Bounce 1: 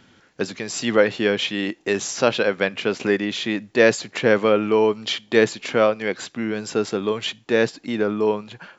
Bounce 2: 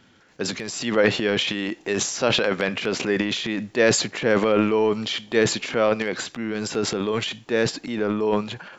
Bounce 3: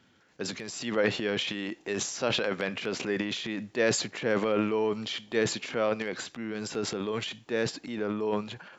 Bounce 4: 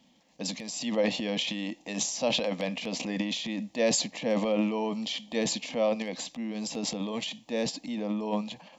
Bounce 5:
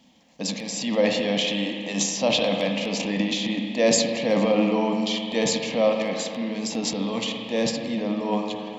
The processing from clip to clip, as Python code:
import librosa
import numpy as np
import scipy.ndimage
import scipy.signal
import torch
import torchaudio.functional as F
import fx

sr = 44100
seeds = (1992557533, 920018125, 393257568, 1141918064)

y1 = fx.transient(x, sr, attack_db=-1, sustain_db=11)
y1 = y1 * librosa.db_to_amplitude(-3.0)
y2 = scipy.signal.sosfilt(scipy.signal.butter(2, 46.0, 'highpass', fs=sr, output='sos'), y1)
y2 = y2 * librosa.db_to_amplitude(-7.5)
y3 = fx.fixed_phaser(y2, sr, hz=390.0, stages=6)
y3 = y3 * librosa.db_to_amplitude(3.5)
y4 = fx.rev_spring(y3, sr, rt60_s=2.5, pass_ms=(35, 59), chirp_ms=50, drr_db=2.5)
y4 = y4 * librosa.db_to_amplitude(5.0)